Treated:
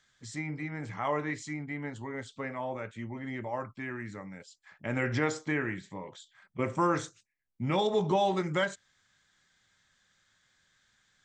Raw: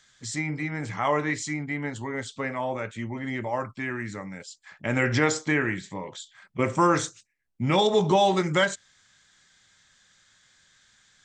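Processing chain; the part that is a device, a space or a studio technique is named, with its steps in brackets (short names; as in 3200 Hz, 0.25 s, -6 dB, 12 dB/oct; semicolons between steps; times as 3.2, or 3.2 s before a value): behind a face mask (high shelf 3500 Hz -7 dB); gain -6 dB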